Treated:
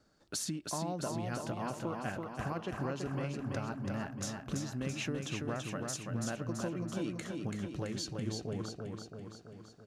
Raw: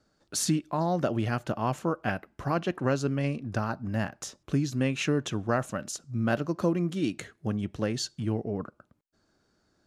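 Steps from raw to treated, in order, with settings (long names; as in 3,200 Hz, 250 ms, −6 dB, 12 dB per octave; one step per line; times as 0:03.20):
downward compressor 5 to 1, threshold −36 dBFS, peak gain reduction 14 dB
repeating echo 333 ms, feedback 59%, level −4 dB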